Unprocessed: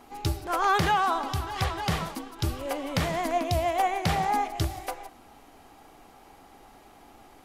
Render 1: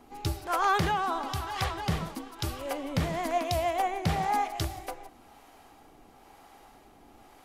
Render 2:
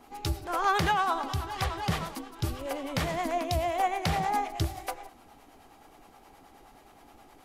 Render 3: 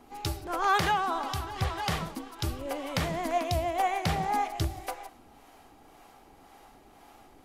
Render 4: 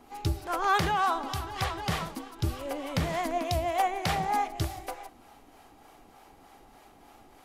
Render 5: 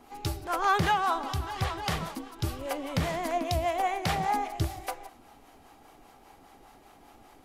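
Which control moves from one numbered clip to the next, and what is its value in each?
harmonic tremolo, rate: 1 Hz, 9.5 Hz, 1.9 Hz, 3.3 Hz, 5 Hz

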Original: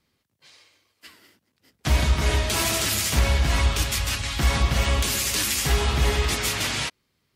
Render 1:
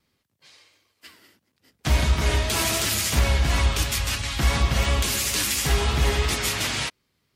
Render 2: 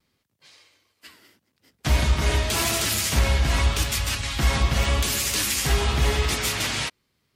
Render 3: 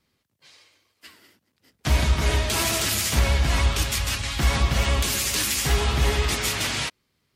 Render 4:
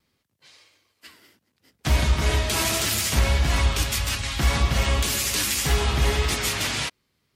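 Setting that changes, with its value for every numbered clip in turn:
vibrato, rate: 2.9 Hz, 0.83 Hz, 10 Hz, 1.8 Hz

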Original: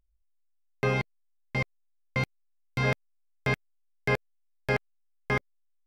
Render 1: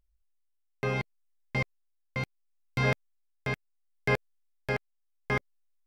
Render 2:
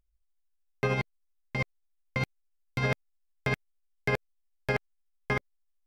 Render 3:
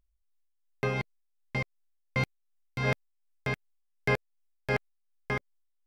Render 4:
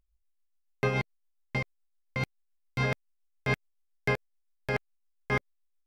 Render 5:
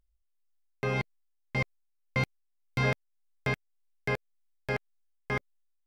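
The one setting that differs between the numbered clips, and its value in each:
tremolo, rate: 0.71 Hz, 13 Hz, 2.7 Hz, 7.1 Hz, 1.8 Hz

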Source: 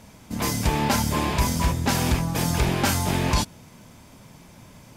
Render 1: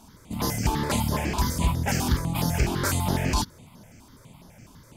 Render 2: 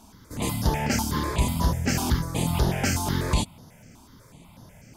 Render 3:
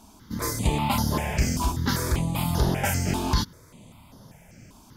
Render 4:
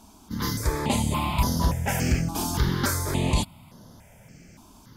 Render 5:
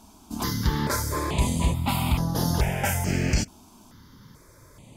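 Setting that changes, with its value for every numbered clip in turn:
stepped phaser, rate: 12 Hz, 8.1 Hz, 5.1 Hz, 3.5 Hz, 2.3 Hz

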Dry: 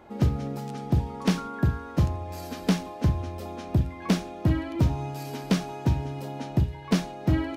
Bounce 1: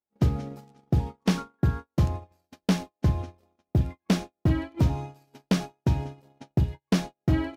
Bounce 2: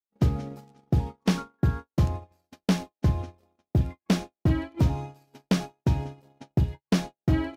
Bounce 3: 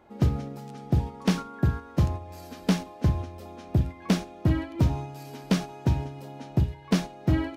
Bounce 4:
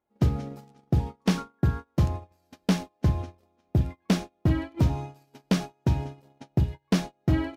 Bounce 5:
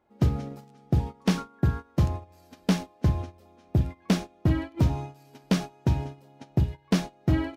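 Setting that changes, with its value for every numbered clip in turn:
gate, range: -47 dB, -59 dB, -6 dB, -32 dB, -19 dB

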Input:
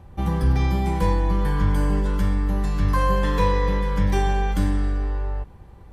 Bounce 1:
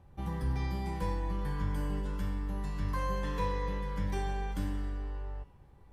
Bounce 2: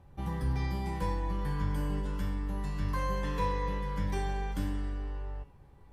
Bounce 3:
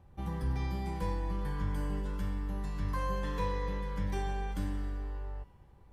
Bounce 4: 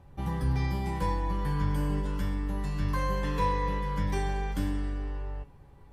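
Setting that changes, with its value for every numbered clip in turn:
feedback comb, decay: 0.98 s, 0.46 s, 2.1 s, 0.17 s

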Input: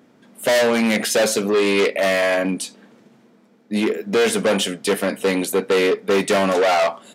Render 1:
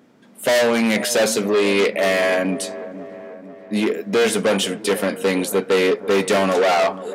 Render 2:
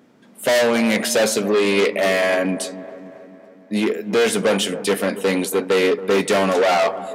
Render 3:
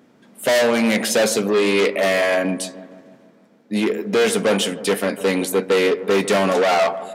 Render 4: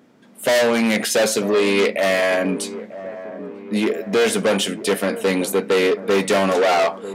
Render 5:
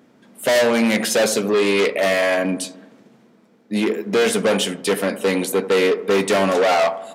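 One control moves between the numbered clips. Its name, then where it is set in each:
feedback echo behind a low-pass, time: 489 ms, 276 ms, 152 ms, 944 ms, 82 ms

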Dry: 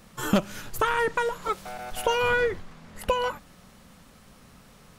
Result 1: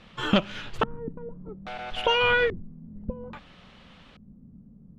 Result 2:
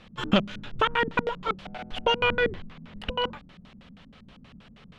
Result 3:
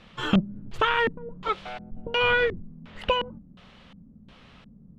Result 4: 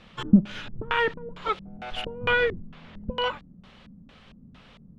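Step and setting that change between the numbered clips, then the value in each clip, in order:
LFO low-pass, rate: 0.6 Hz, 6.3 Hz, 1.4 Hz, 2.2 Hz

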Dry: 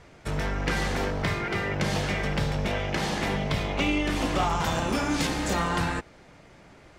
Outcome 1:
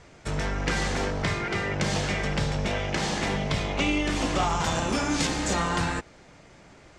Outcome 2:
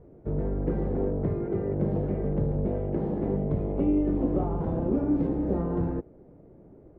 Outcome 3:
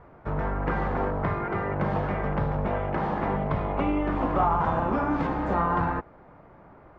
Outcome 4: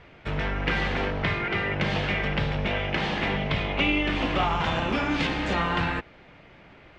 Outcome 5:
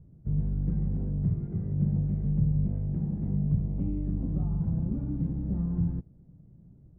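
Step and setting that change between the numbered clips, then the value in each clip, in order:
resonant low-pass, frequency: 7.6 kHz, 410 Hz, 1.1 kHz, 2.9 kHz, 160 Hz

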